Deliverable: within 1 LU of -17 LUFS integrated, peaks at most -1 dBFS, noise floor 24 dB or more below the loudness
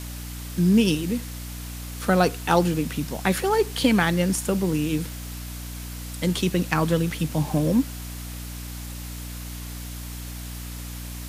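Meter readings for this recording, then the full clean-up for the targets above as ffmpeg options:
hum 60 Hz; harmonics up to 300 Hz; hum level -33 dBFS; noise floor -35 dBFS; noise floor target -48 dBFS; loudness -24.0 LUFS; peak -4.0 dBFS; loudness target -17.0 LUFS
-> -af "bandreject=f=60:t=h:w=6,bandreject=f=120:t=h:w=6,bandreject=f=180:t=h:w=6,bandreject=f=240:t=h:w=6,bandreject=f=300:t=h:w=6"
-af "afftdn=nr=13:nf=-35"
-af "volume=7dB,alimiter=limit=-1dB:level=0:latency=1"

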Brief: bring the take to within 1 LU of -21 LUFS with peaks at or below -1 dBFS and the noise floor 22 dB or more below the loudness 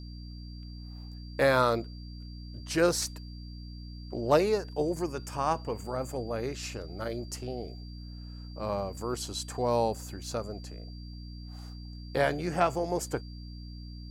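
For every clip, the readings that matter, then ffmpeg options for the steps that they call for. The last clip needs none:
hum 60 Hz; harmonics up to 300 Hz; hum level -40 dBFS; steady tone 4700 Hz; tone level -53 dBFS; loudness -31.0 LUFS; peak -12.0 dBFS; loudness target -21.0 LUFS
-> -af "bandreject=f=60:t=h:w=6,bandreject=f=120:t=h:w=6,bandreject=f=180:t=h:w=6,bandreject=f=240:t=h:w=6,bandreject=f=300:t=h:w=6"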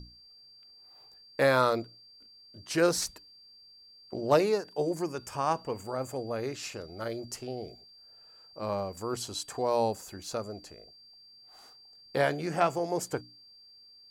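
hum none; steady tone 4700 Hz; tone level -53 dBFS
-> -af "bandreject=f=4.7k:w=30"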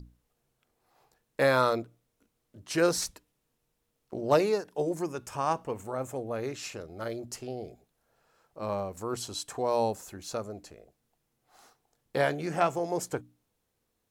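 steady tone none; loudness -31.0 LUFS; peak -12.0 dBFS; loudness target -21.0 LUFS
-> -af "volume=10dB"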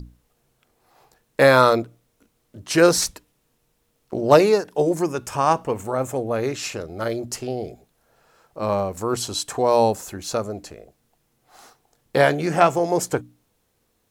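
loudness -21.0 LUFS; peak -2.0 dBFS; noise floor -69 dBFS

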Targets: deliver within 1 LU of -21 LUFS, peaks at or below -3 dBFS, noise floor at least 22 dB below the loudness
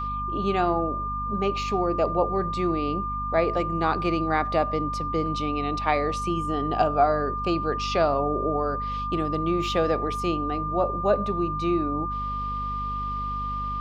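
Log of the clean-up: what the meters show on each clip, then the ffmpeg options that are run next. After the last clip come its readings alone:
hum 50 Hz; harmonics up to 250 Hz; hum level -32 dBFS; steady tone 1200 Hz; tone level -28 dBFS; loudness -25.5 LUFS; peak -7.5 dBFS; loudness target -21.0 LUFS
-> -af "bandreject=f=50:t=h:w=6,bandreject=f=100:t=h:w=6,bandreject=f=150:t=h:w=6,bandreject=f=200:t=h:w=6,bandreject=f=250:t=h:w=6"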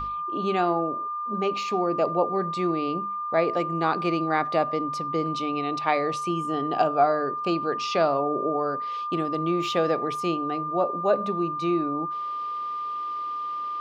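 hum none; steady tone 1200 Hz; tone level -28 dBFS
-> -af "bandreject=f=1.2k:w=30"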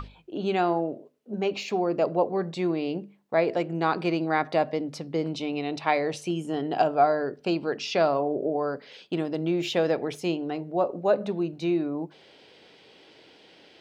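steady tone none; loudness -27.0 LUFS; peak -8.0 dBFS; loudness target -21.0 LUFS
-> -af "volume=6dB,alimiter=limit=-3dB:level=0:latency=1"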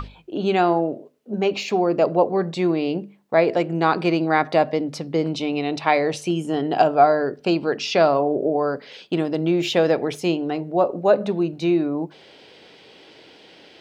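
loudness -21.0 LUFS; peak -3.0 dBFS; noise floor -49 dBFS

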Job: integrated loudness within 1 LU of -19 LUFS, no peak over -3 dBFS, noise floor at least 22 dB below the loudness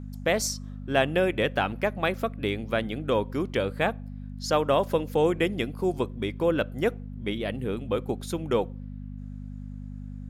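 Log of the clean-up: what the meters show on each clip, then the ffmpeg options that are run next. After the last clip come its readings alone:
hum 50 Hz; harmonics up to 250 Hz; hum level -36 dBFS; loudness -27.5 LUFS; peak -9.5 dBFS; loudness target -19.0 LUFS
-> -af "bandreject=f=50:t=h:w=4,bandreject=f=100:t=h:w=4,bandreject=f=150:t=h:w=4,bandreject=f=200:t=h:w=4,bandreject=f=250:t=h:w=4"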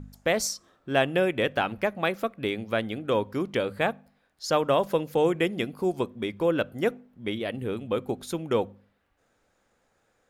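hum none; loudness -28.0 LUFS; peak -9.5 dBFS; loudness target -19.0 LUFS
-> -af "volume=9dB,alimiter=limit=-3dB:level=0:latency=1"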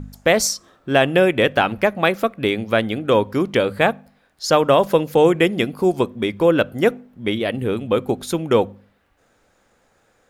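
loudness -19.0 LUFS; peak -3.0 dBFS; noise floor -62 dBFS

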